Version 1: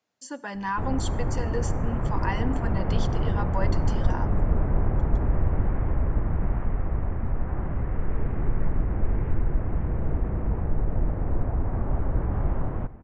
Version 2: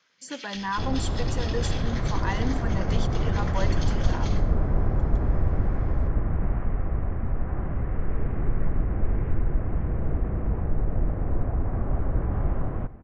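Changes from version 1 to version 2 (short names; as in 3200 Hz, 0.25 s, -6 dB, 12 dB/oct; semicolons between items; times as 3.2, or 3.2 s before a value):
first sound: unmuted; master: add notch 900 Hz, Q 13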